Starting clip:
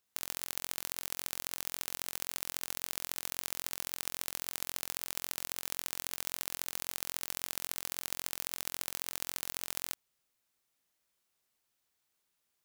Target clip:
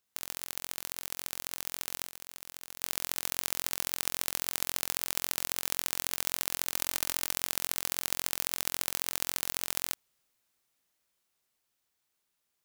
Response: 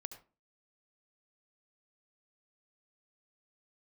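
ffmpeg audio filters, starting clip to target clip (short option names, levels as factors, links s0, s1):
-filter_complex "[0:a]asettb=1/sr,asplit=3[s0][s1][s2];[s0]atrim=end=2.064[s3];[s1]atrim=start=2.06:end=2.82,asetpts=PTS-STARTPTS,afade=t=in:d=0.004:c=qsin,afade=t=out:st=0.756:d=0.004:c=qsin,acompressor=threshold=0.00891:ratio=6[s4];[s2]atrim=start=2.816[s5];[s3][s4]acrossfade=d=0.004:c1=hsin:c2=qsin[s6];[s6][s5]acrossfade=d=0.004:c1=qsin:c2=hsin,asettb=1/sr,asplit=3[s7][s8][s9];[s7]atrim=end=6.734[s10];[s8]atrim=start=6.73:end=7.32,asetpts=PTS-STARTPTS,afade=t=in:d=0.004:c=qsin,afade=t=out:st=0.586:d=0.004:c=qsin,aecho=1:1:3.3:0.38,atrim=end_sample=26019[s11];[s9]atrim=start=7.316[s12];[s10][s11]acrossfade=d=0.004:c1=hsin:c2=qsin[s13];[s13][s12]acrossfade=d=0.004:c1=qsin:c2=hsin,dynaudnorm=f=240:g=21:m=3.76"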